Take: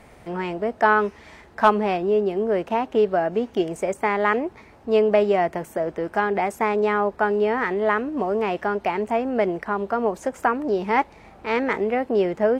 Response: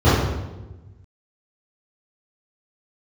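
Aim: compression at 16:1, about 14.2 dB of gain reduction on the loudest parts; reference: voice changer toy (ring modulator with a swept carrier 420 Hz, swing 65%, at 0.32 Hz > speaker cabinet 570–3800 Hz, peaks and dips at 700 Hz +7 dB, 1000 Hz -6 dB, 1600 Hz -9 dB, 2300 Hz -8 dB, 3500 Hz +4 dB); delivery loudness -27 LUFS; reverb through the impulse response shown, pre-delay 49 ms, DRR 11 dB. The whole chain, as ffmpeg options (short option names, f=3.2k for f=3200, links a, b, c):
-filter_complex "[0:a]acompressor=threshold=-26dB:ratio=16,asplit=2[a][b];[1:a]atrim=start_sample=2205,adelay=49[c];[b][c]afir=irnorm=-1:irlink=0,volume=-36dB[d];[a][d]amix=inputs=2:normalize=0,aeval=exprs='val(0)*sin(2*PI*420*n/s+420*0.65/0.32*sin(2*PI*0.32*n/s))':c=same,highpass=570,equalizer=f=700:t=q:w=4:g=7,equalizer=f=1k:t=q:w=4:g=-6,equalizer=f=1.6k:t=q:w=4:g=-9,equalizer=f=2.3k:t=q:w=4:g=-8,equalizer=f=3.5k:t=q:w=4:g=4,lowpass=f=3.8k:w=0.5412,lowpass=f=3.8k:w=1.3066,volume=9.5dB"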